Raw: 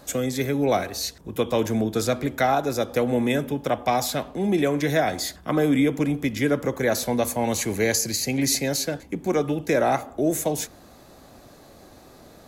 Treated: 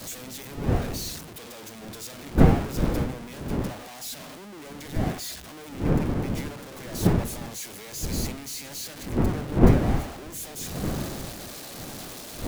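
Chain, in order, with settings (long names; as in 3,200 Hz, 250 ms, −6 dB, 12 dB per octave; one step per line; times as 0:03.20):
sign of each sample alone
wind on the microphone 240 Hz −19 dBFS
multiband upward and downward expander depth 100%
level −11.5 dB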